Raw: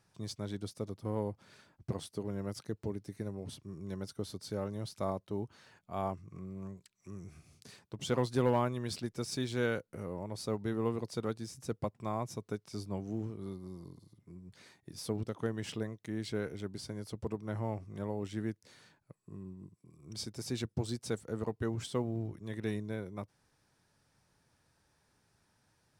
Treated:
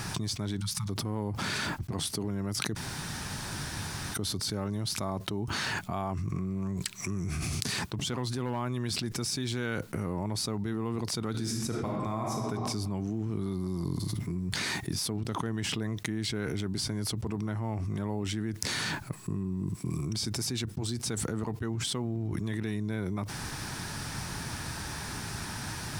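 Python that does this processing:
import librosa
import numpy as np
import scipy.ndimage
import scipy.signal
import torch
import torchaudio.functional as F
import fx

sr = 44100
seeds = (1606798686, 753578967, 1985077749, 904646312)

y = fx.spec_erase(x, sr, start_s=0.61, length_s=0.28, low_hz=210.0, high_hz=830.0)
y = fx.reverb_throw(y, sr, start_s=11.31, length_s=1.09, rt60_s=1.3, drr_db=0.0)
y = fx.edit(y, sr, fx.room_tone_fill(start_s=2.75, length_s=1.39), tone=tone)
y = fx.peak_eq(y, sr, hz=520.0, db=-9.0, octaves=0.64)
y = fx.env_flatten(y, sr, amount_pct=100)
y = F.gain(torch.from_numpy(y), -4.0).numpy()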